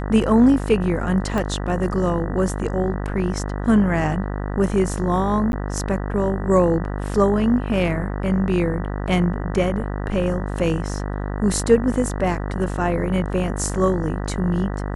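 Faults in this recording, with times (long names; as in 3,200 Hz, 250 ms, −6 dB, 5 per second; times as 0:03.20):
mains buzz 50 Hz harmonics 39 −26 dBFS
0:01.38: click −12 dBFS
0:05.52–0:05.53: drop-out 11 ms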